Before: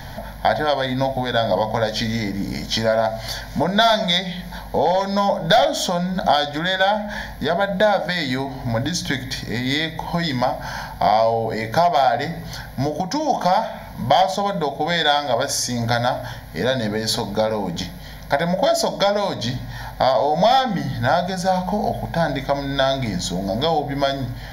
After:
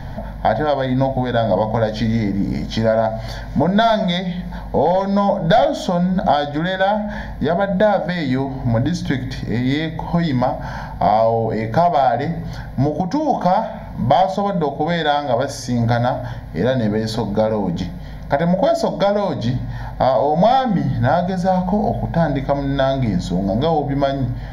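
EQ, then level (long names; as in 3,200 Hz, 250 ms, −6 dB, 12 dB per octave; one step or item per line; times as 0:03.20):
spectral tilt −3.5 dB per octave
low-shelf EQ 96 Hz −11.5 dB
0.0 dB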